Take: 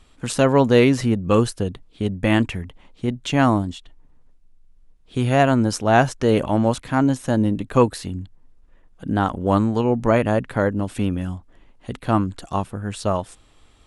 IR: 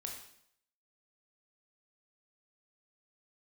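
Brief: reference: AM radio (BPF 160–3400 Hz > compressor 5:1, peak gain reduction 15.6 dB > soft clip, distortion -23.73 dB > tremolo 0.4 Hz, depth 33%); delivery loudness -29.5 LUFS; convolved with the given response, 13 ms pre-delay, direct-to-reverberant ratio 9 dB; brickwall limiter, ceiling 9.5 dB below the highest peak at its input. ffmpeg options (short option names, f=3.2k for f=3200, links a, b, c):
-filter_complex "[0:a]alimiter=limit=-11.5dB:level=0:latency=1,asplit=2[a][b];[1:a]atrim=start_sample=2205,adelay=13[c];[b][c]afir=irnorm=-1:irlink=0,volume=-7dB[d];[a][d]amix=inputs=2:normalize=0,highpass=160,lowpass=3.4k,acompressor=threshold=-33dB:ratio=5,asoftclip=threshold=-22.5dB,tremolo=f=0.4:d=0.33,volume=9.5dB"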